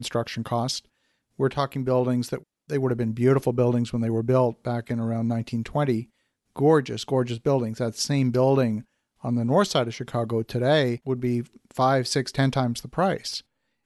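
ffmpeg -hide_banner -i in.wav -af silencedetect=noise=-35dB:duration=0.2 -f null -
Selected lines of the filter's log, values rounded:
silence_start: 0.79
silence_end: 1.39 | silence_duration: 0.61
silence_start: 2.38
silence_end: 2.70 | silence_duration: 0.31
silence_start: 6.03
silence_end: 6.56 | silence_duration: 0.53
silence_start: 8.81
silence_end: 9.24 | silence_duration: 0.44
silence_start: 11.43
silence_end: 11.71 | silence_duration: 0.28
silence_start: 13.40
silence_end: 13.86 | silence_duration: 0.46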